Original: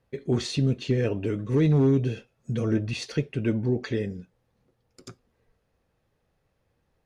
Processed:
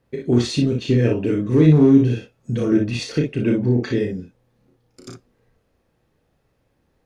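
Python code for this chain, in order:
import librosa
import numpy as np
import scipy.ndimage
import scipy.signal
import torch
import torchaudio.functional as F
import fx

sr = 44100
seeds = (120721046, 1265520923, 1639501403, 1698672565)

y = fx.peak_eq(x, sr, hz=290.0, db=5.0, octaves=0.91)
y = fx.room_early_taps(y, sr, ms=(33, 58), db=(-4.5, -5.0))
y = F.gain(torch.from_numpy(y), 3.0).numpy()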